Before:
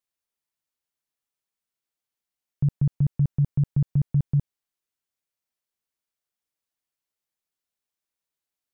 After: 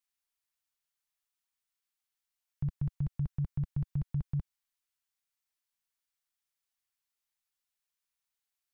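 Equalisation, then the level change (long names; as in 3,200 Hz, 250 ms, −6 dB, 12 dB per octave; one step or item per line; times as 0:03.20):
octave-band graphic EQ 125/250/500 Hz −9/−10/−11 dB
0.0 dB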